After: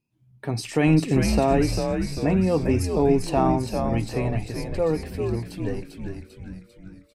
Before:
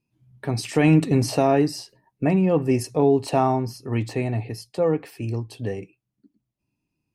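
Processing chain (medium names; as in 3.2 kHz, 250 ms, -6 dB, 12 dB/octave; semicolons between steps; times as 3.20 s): frequency-shifting echo 396 ms, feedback 55%, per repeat -100 Hz, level -5 dB; trim -2 dB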